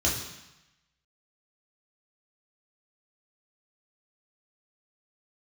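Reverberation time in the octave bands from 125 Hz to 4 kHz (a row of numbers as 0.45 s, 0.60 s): 1.1 s, 0.95 s, 0.80 s, 1.0 s, 1.1 s, 1.0 s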